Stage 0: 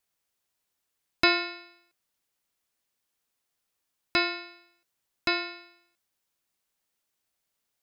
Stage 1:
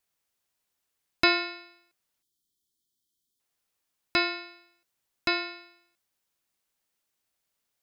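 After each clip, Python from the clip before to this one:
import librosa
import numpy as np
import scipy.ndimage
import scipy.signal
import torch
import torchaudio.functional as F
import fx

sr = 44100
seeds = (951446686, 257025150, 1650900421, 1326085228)

y = fx.spec_erase(x, sr, start_s=2.22, length_s=1.18, low_hz=420.0, high_hz=3000.0)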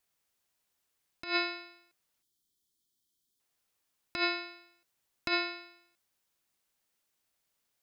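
y = fx.over_compress(x, sr, threshold_db=-27.0, ratio=-0.5)
y = F.gain(torch.from_numpy(y), -2.5).numpy()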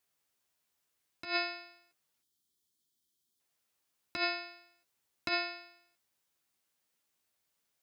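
y = scipy.signal.sosfilt(scipy.signal.butter(2, 60.0, 'highpass', fs=sr, output='sos'), x)
y = fx.doubler(y, sr, ms=13.0, db=-7.5)
y = F.gain(torch.from_numpy(y), -1.5).numpy()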